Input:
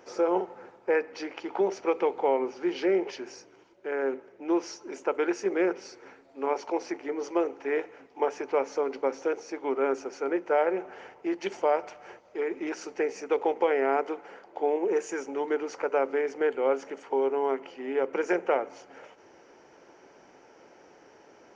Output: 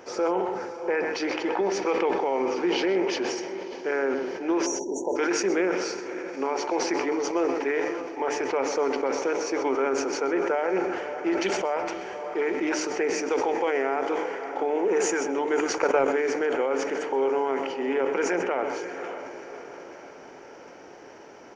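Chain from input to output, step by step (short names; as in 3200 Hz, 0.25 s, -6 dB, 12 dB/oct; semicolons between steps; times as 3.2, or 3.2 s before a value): dynamic EQ 460 Hz, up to -4 dB, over -33 dBFS, Q 0.74; on a send: diffused feedback echo 0.588 s, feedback 48%, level -14 dB; on the sum: limiter -24 dBFS, peak gain reduction 9 dB; 4.66–5.16 spectral delete 1000–5600 Hz; outdoor echo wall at 22 m, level -12 dB; 15.6–16.08 transient shaper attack +7 dB, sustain -10 dB; sustainer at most 35 dB/s; gain +7 dB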